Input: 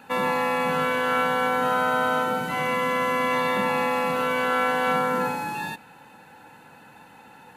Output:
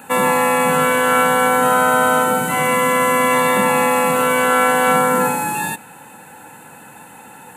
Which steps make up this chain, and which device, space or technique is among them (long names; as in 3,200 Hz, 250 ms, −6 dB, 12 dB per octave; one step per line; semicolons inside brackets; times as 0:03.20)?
budget condenser microphone (high-pass filter 80 Hz; high shelf with overshoot 6,500 Hz +8 dB, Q 3)
level +8.5 dB